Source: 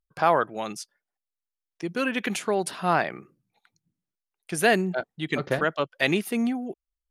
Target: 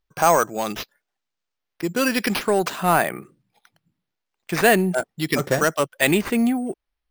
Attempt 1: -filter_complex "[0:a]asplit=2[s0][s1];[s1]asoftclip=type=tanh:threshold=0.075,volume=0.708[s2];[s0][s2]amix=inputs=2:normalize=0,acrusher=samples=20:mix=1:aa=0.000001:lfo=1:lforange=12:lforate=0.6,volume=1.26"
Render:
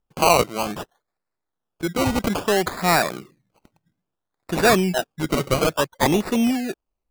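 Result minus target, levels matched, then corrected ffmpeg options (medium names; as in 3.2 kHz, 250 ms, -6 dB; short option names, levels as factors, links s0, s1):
decimation with a swept rate: distortion +12 dB
-filter_complex "[0:a]asplit=2[s0][s1];[s1]asoftclip=type=tanh:threshold=0.075,volume=0.708[s2];[s0][s2]amix=inputs=2:normalize=0,acrusher=samples=5:mix=1:aa=0.000001:lfo=1:lforange=3:lforate=0.6,volume=1.26"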